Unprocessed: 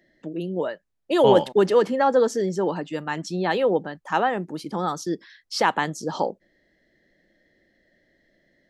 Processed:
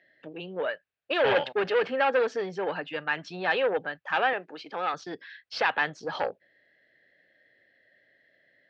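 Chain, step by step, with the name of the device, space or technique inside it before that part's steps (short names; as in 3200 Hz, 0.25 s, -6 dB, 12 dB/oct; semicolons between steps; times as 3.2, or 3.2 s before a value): guitar amplifier (tube stage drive 17 dB, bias 0.3; tone controls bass -10 dB, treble +2 dB; speaker cabinet 85–4000 Hz, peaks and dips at 110 Hz +8 dB, 210 Hz -8 dB, 340 Hz -9 dB, 960 Hz -5 dB, 1600 Hz +7 dB, 2600 Hz +7 dB); 4.33–4.94 HPF 300 Hz 12 dB/oct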